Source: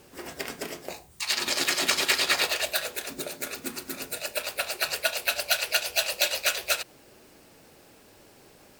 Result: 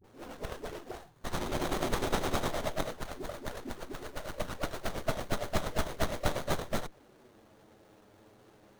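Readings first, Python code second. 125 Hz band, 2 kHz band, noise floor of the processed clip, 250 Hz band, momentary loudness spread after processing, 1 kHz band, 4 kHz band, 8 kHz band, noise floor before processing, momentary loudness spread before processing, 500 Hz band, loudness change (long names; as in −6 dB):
+13.0 dB, −13.0 dB, −61 dBFS, +3.5 dB, 11 LU, −1.5 dB, −15.5 dB, −14.5 dB, −55 dBFS, 14 LU, −1.0 dB, −9.5 dB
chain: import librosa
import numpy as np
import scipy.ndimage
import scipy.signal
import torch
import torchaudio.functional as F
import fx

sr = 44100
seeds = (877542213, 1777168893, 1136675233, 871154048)

y = fx.env_flanger(x, sr, rest_ms=11.5, full_db=-25.5)
y = fx.dispersion(y, sr, late='highs', ms=42.0, hz=470.0)
y = fx.running_max(y, sr, window=17)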